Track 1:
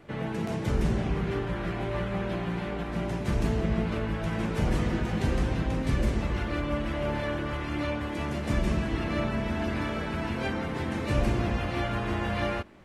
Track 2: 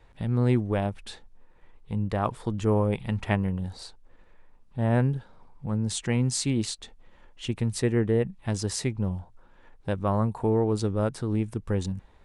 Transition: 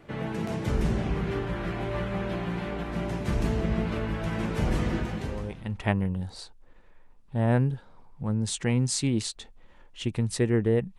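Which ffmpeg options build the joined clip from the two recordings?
-filter_complex "[0:a]apad=whole_dur=10.98,atrim=end=10.98,atrim=end=5.91,asetpts=PTS-STARTPTS[a];[1:a]atrim=start=2.4:end=8.41,asetpts=PTS-STARTPTS[b];[a][b]acrossfade=d=0.94:c1=qua:c2=qua"

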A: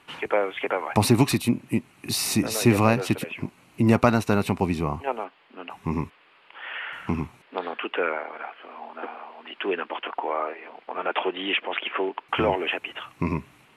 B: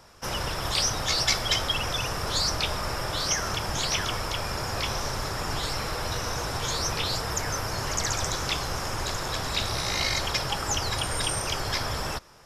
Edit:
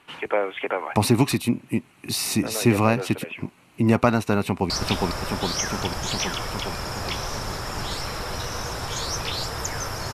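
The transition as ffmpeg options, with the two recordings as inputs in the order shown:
-filter_complex "[0:a]apad=whole_dur=10.13,atrim=end=10.13,atrim=end=4.702[a];[1:a]atrim=start=2.418:end=7.85[b];[a][b]acrossfade=d=0.004:c1=hsin:c2=hsin,asplit=2[c][d];[d]afade=t=in:st=4.4:d=0.01,afade=t=out:st=4.7:d=0.01,aecho=0:1:410|820|1230|1640|2050|2460|2870|3280|3690|4100|4510|4920:0.891251|0.668438|0.501329|0.375996|0.281997|0.211498|0.158624|0.118968|0.0892257|0.0669193|0.0501895|0.0376421[e];[c][e]amix=inputs=2:normalize=0"

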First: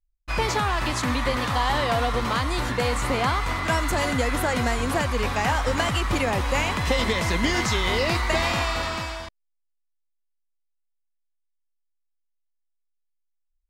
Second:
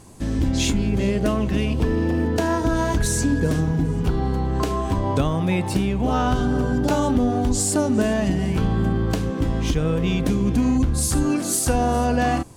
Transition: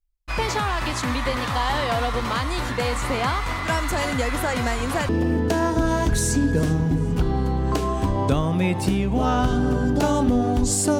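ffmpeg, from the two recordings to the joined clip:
-filter_complex "[0:a]apad=whole_dur=10.99,atrim=end=10.99,atrim=end=5.092[a];[1:a]atrim=start=1.968:end=7.87[b];[a][b]acrossfade=d=0.004:c1=hsin:c2=hsin"

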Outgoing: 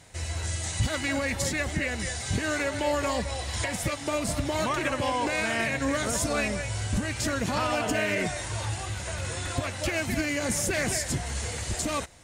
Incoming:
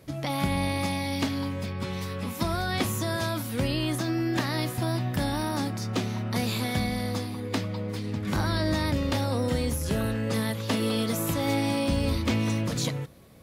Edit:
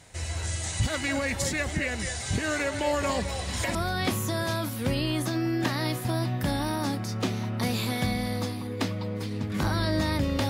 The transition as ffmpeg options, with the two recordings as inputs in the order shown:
-filter_complex "[1:a]asplit=2[a][b];[0:a]apad=whole_dur=10.49,atrim=end=10.49,atrim=end=3.752[c];[b]atrim=start=2.478:end=9.22[d];[a]atrim=start=1.73:end=2.48,asetpts=PTS-STARTPTS,volume=-7dB,afade=t=in:d=0.004:c=hsin,afade=t=out:st=0.746:d=0.004:c=hsin,adelay=3000[e];[c][d]acrossfade=d=0.004:c1=hsin:c2=hsin[f];[f][e]amix=inputs=2:normalize=0"

